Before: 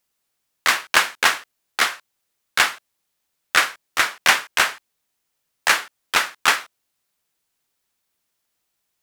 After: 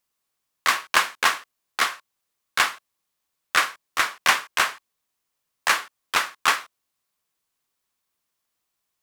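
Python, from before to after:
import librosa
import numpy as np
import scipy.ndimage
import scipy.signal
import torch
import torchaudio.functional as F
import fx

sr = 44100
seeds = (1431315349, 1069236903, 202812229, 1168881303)

y = fx.peak_eq(x, sr, hz=1100.0, db=7.0, octaves=0.22)
y = y * librosa.db_to_amplitude(-4.0)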